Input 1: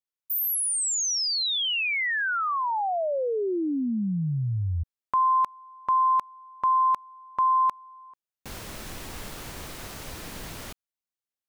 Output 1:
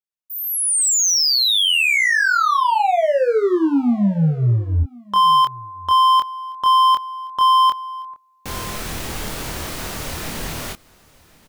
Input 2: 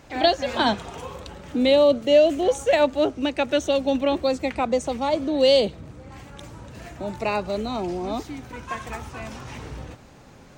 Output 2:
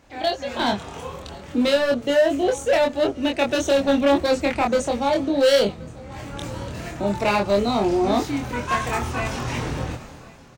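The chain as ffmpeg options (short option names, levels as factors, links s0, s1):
-filter_complex "[0:a]dynaudnorm=f=110:g=11:m=5.96,volume=3.16,asoftclip=hard,volume=0.316,asplit=2[s0][s1];[s1]adelay=25,volume=0.708[s2];[s0][s2]amix=inputs=2:normalize=0,aecho=1:1:1075:0.0668,volume=0.473"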